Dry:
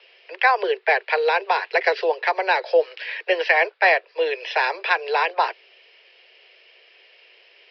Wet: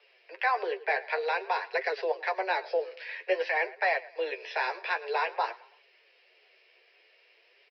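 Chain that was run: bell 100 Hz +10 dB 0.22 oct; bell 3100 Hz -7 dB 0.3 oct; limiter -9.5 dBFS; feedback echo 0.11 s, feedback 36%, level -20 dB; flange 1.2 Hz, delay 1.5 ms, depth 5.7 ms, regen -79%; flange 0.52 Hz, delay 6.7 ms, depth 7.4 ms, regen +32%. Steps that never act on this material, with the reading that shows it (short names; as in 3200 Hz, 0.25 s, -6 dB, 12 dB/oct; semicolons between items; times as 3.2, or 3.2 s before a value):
bell 100 Hz: input band starts at 320 Hz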